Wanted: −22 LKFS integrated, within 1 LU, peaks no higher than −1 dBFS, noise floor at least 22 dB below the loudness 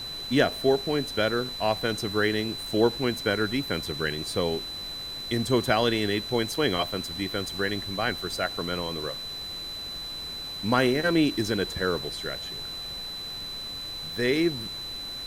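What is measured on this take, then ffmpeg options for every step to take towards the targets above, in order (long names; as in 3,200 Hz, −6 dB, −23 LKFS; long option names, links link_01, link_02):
interfering tone 4,000 Hz; level of the tone −34 dBFS; background noise floor −36 dBFS; target noise floor −50 dBFS; integrated loudness −27.5 LKFS; sample peak −8.0 dBFS; target loudness −22.0 LKFS
→ -af "bandreject=frequency=4000:width=30"
-af "afftdn=noise_reduction=14:noise_floor=-36"
-af "volume=5.5dB"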